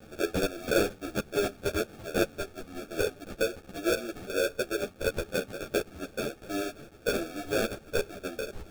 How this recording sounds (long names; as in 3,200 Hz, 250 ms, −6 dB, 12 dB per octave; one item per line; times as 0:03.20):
a quantiser's noise floor 8 bits, dither triangular
tremolo saw down 1.4 Hz, depth 40%
aliases and images of a low sample rate 1,000 Hz, jitter 0%
a shimmering, thickened sound